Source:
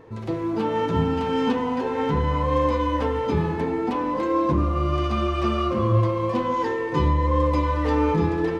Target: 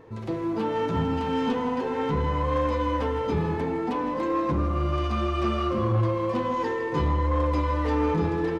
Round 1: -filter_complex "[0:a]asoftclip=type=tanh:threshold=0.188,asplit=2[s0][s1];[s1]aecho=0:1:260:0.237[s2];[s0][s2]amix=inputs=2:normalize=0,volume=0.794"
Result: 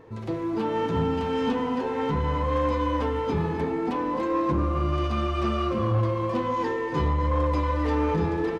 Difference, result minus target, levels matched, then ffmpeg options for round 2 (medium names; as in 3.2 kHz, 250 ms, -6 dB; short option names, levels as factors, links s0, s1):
echo 100 ms late
-filter_complex "[0:a]asoftclip=type=tanh:threshold=0.188,asplit=2[s0][s1];[s1]aecho=0:1:160:0.237[s2];[s0][s2]amix=inputs=2:normalize=0,volume=0.794"